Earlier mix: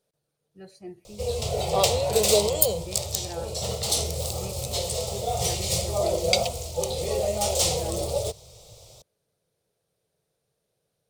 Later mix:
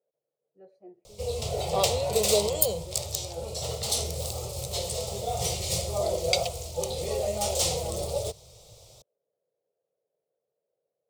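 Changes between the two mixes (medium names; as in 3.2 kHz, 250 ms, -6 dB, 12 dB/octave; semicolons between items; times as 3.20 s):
speech: add band-pass filter 540 Hz, Q 2.8; background -3.0 dB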